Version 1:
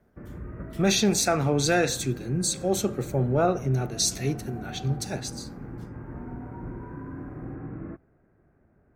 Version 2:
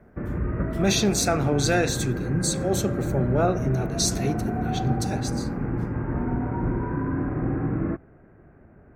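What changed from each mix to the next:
background +11.5 dB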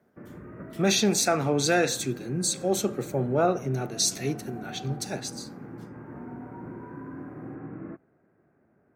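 background −11.5 dB
master: add high-pass filter 160 Hz 12 dB per octave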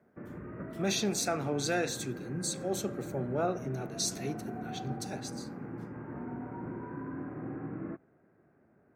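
speech −8.0 dB

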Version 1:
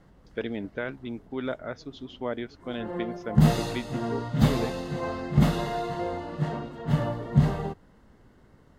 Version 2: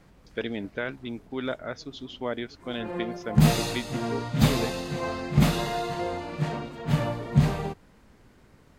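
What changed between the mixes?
background: remove Butterworth band-reject 2,400 Hz, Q 7.4
master: add high-shelf EQ 2,500 Hz +8 dB

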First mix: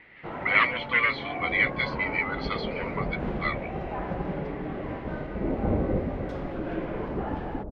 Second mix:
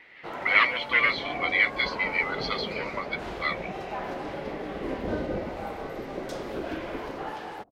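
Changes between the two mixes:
first sound: add high-shelf EQ 3,700 Hz +9 dB
second sound: entry −0.60 s
master: add bass and treble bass −10 dB, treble +13 dB

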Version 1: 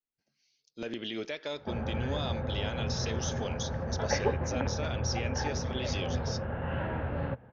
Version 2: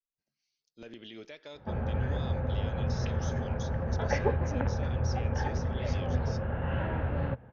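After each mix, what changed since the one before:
speech −10.0 dB
master: add low-shelf EQ 73 Hz +9 dB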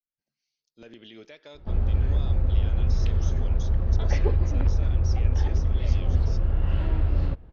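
background: remove loudspeaker in its box 120–3,000 Hz, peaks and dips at 120 Hz +6 dB, 230 Hz +4 dB, 330 Hz −7 dB, 530 Hz +7 dB, 850 Hz +7 dB, 1,600 Hz +9 dB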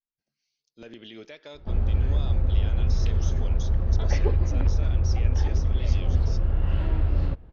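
speech +3.0 dB

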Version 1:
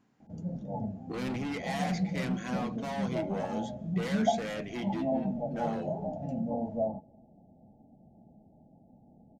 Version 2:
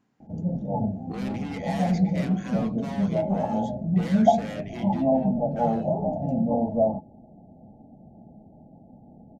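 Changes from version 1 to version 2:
background +9.5 dB
reverb: off

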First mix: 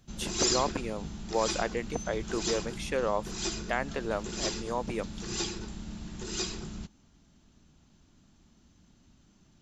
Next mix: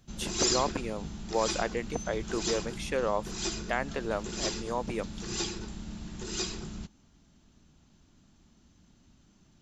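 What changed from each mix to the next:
nothing changed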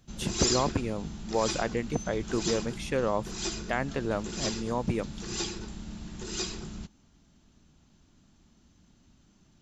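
speech: add bass and treble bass +13 dB, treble −1 dB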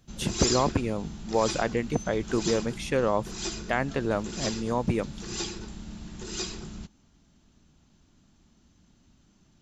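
speech +3.0 dB

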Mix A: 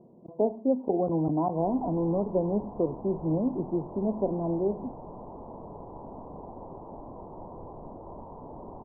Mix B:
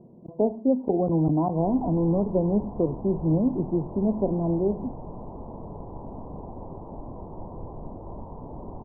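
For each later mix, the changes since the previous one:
master: add low-shelf EQ 220 Hz +10.5 dB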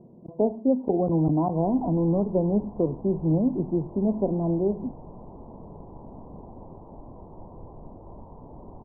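background −5.5 dB

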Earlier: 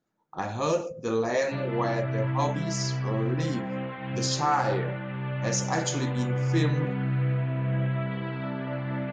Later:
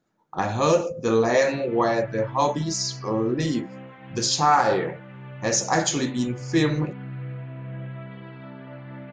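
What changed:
speech +6.5 dB
background −8.0 dB

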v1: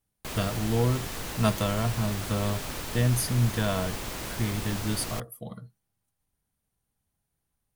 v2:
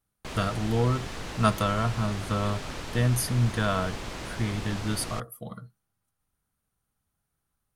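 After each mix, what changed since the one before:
speech: add parametric band 1,300 Hz +8.5 dB 0.47 octaves
background: add high-frequency loss of the air 67 metres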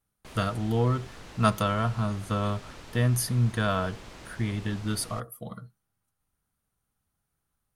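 background −9.0 dB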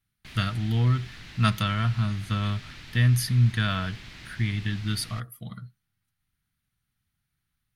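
master: add octave-band graphic EQ 125/500/1,000/2,000/4,000/8,000 Hz +5/−12/−6/+7/+6/−5 dB

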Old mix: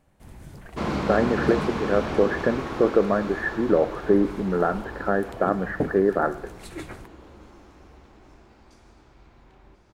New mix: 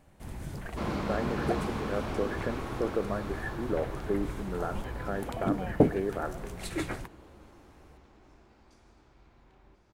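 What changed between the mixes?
speech −11.5 dB
first sound +4.0 dB
second sound −6.5 dB

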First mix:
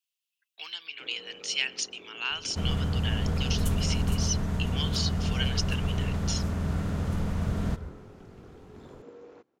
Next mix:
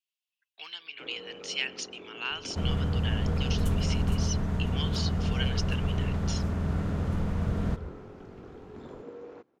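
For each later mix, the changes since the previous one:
first sound +4.5 dB
master: add high-shelf EQ 4,300 Hz −9 dB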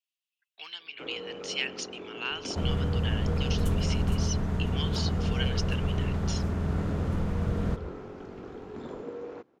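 first sound +5.0 dB

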